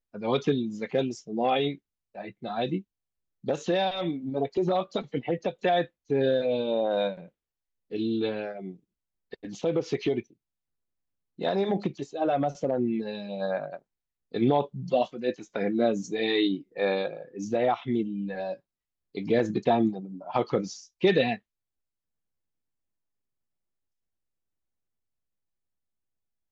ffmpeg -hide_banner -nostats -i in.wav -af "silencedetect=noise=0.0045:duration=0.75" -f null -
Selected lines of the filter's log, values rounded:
silence_start: 10.31
silence_end: 11.39 | silence_duration: 1.08
silence_start: 21.38
silence_end: 26.51 | silence_duration: 5.13